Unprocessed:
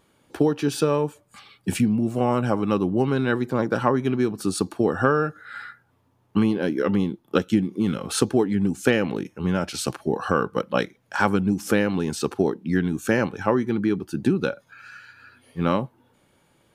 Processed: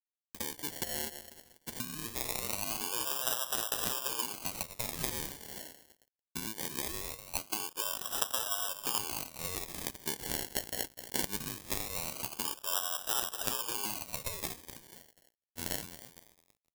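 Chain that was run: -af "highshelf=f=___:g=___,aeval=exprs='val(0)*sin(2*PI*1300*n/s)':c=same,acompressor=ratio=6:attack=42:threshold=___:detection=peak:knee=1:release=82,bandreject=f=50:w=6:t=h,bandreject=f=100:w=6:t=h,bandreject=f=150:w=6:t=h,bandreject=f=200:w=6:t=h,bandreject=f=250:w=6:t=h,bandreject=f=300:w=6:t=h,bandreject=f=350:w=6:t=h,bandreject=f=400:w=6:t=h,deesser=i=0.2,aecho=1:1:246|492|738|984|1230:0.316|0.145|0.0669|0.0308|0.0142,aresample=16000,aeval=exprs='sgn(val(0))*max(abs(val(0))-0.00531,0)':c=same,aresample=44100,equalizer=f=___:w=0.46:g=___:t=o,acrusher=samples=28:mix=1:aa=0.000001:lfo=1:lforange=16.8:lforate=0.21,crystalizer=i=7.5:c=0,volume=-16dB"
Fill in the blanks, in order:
4.7k, -4, -31dB, 3.1k, 14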